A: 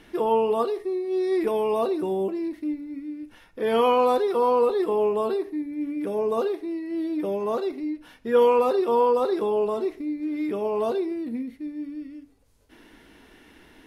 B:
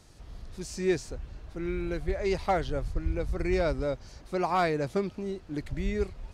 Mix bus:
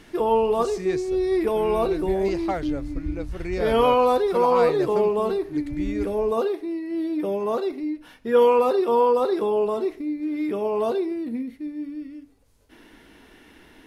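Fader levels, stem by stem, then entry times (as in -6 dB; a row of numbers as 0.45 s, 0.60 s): +1.5 dB, -1.0 dB; 0.00 s, 0.00 s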